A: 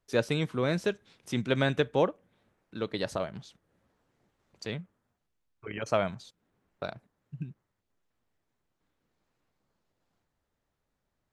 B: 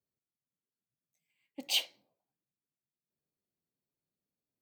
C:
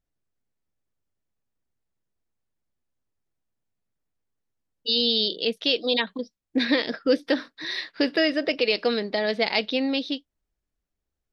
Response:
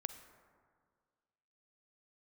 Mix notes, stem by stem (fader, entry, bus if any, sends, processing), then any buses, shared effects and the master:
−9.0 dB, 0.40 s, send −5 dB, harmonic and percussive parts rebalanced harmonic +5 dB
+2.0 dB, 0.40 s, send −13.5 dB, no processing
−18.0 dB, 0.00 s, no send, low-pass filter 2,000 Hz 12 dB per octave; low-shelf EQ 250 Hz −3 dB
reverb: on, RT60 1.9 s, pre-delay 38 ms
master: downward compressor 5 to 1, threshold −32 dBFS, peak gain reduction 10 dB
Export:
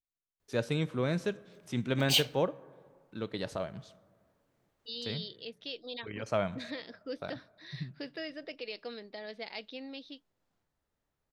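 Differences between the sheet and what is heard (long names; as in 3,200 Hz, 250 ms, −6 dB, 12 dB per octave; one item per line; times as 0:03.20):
stem C: missing low-pass filter 2,000 Hz 12 dB per octave
master: missing downward compressor 5 to 1, threshold −32 dBFS, peak gain reduction 10 dB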